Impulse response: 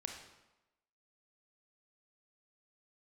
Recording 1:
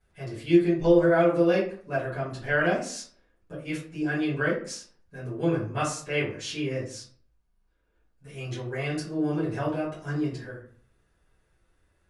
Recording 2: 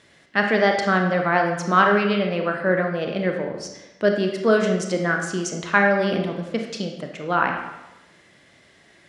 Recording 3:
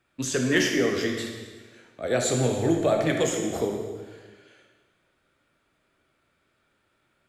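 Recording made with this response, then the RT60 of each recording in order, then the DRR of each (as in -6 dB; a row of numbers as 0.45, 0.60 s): 2; 0.50, 1.0, 1.5 s; -13.0, 2.5, 1.5 dB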